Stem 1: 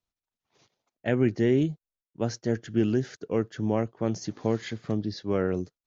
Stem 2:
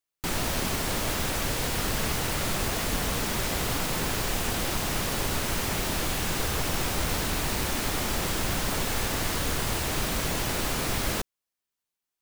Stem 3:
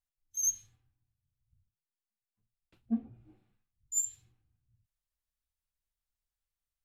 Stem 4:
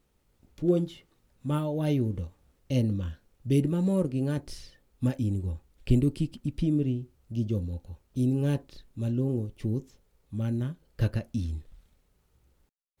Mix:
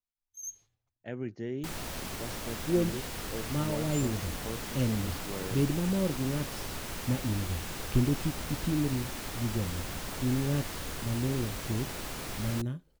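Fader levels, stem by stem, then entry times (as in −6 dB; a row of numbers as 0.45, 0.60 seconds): −13.5, −10.0, −11.0, −3.5 decibels; 0.00, 1.40, 0.00, 2.05 seconds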